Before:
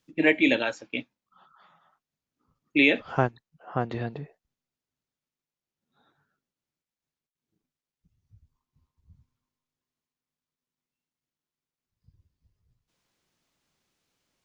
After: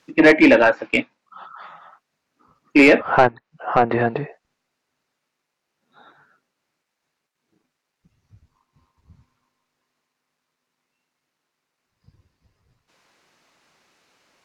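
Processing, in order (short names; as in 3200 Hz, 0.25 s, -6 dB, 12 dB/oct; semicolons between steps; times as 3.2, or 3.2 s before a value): treble ducked by the level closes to 1700 Hz, closed at -25.5 dBFS; bell 3300 Hz -4.5 dB 0.27 oct; overdrive pedal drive 20 dB, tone 2300 Hz, clips at -7.5 dBFS; gain +6.5 dB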